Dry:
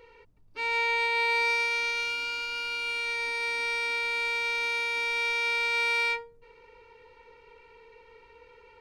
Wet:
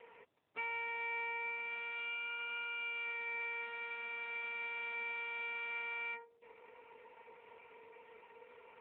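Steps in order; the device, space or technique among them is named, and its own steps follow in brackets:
voicemail (band-pass filter 430–3,000 Hz; downward compressor 10 to 1, threshold −36 dBFS, peak gain reduction 11 dB; level −1 dB; AMR narrowband 7.95 kbit/s 8,000 Hz)

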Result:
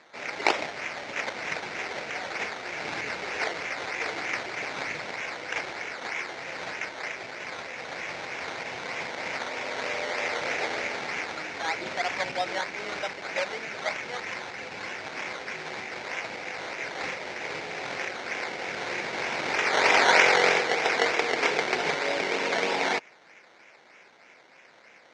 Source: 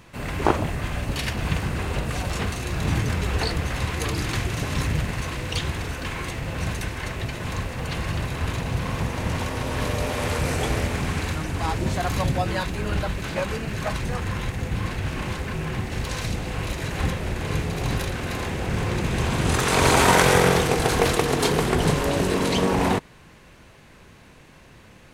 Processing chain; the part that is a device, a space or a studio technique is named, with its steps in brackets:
0:07.09–0:08.09: Chebyshev low-pass filter 2,500 Hz, order 5
circuit-bent sampling toy (sample-and-hold swept by an LFO 14×, swing 60% 3.2 Hz; loudspeaker in its box 580–5,800 Hz, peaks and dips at 1,100 Hz −7 dB, 2,200 Hz +8 dB, 3,200 Hz −3 dB)

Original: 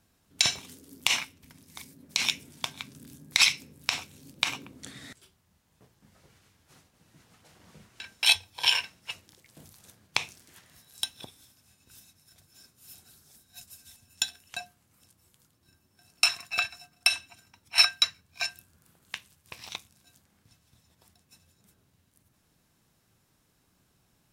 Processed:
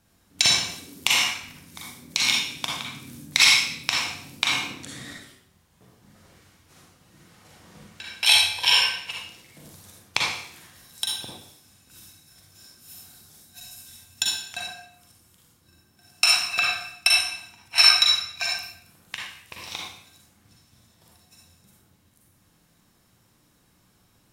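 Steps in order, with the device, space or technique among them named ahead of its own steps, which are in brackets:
bathroom (convolution reverb RT60 0.65 s, pre-delay 38 ms, DRR −3 dB)
level +2 dB

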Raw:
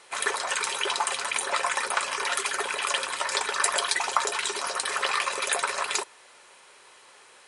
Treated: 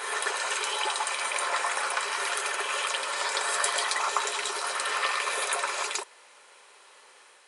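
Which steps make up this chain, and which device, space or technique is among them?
ghost voice (reversed playback; convolution reverb RT60 1.2 s, pre-delay 89 ms, DRR 0 dB; reversed playback; high-pass filter 300 Hz 12 dB per octave)
level −4 dB

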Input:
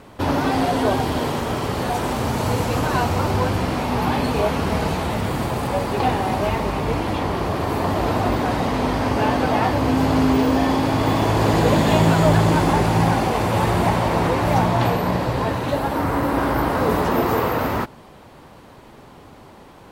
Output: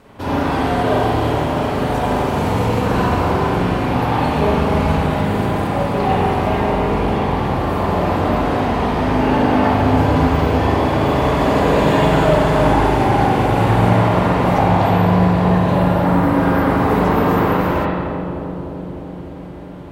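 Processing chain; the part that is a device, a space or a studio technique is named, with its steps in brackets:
dub delay into a spring reverb (feedback echo with a low-pass in the loop 301 ms, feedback 82%, low-pass 970 Hz, level −7 dB; spring reverb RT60 1.5 s, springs 39/44 ms, chirp 55 ms, DRR −6.5 dB)
level −4.5 dB

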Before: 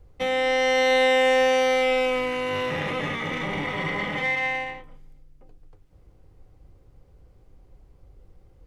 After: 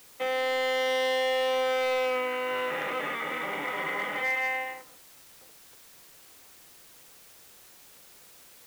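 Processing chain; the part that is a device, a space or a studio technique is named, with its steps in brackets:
drive-through speaker (band-pass filter 380–3,100 Hz; parametric band 1,400 Hz +7.5 dB 0.26 octaves; hard clipping −20.5 dBFS, distortion −10 dB; white noise bed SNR 22 dB)
level −2.5 dB

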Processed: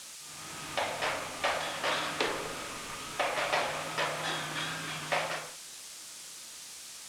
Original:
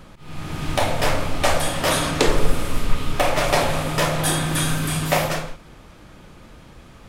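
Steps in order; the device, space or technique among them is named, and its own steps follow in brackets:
cassette deck with a dirty head (head-to-tape spacing loss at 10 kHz 38 dB; tape wow and flutter; white noise bed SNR 27 dB)
meter weighting curve ITU-R 468
level −5.5 dB

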